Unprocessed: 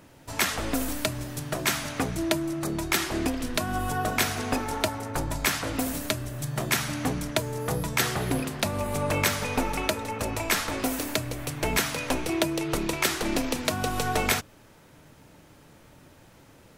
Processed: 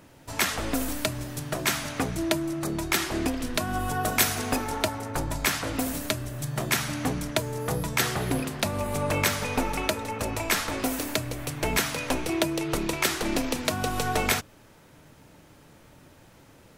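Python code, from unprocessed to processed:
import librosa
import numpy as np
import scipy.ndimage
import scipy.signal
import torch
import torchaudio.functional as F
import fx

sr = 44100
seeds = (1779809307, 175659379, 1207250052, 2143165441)

y = fx.high_shelf(x, sr, hz=fx.line((4.03, 6200.0), (4.67, 9200.0)), db=9.0, at=(4.03, 4.67), fade=0.02)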